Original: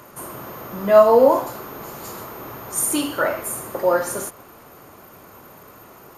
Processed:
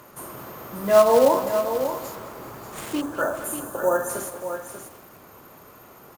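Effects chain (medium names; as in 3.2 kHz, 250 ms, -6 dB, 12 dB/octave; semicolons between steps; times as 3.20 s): 2.15–3.44 s: median filter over 9 samples; short-mantissa float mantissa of 2-bit; 3.01–4.09 s: spectral selection erased 1.8–5.9 kHz; on a send: delay 589 ms -9 dB; on the sum: bit-crushed delay 204 ms, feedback 55%, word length 6-bit, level -13 dB; trim -3.5 dB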